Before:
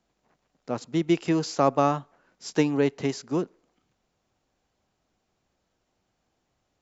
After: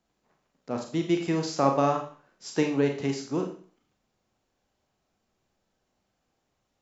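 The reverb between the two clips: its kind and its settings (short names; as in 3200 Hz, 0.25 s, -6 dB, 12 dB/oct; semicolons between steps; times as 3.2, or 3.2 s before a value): Schroeder reverb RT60 0.44 s, combs from 29 ms, DRR 3 dB; gain -3 dB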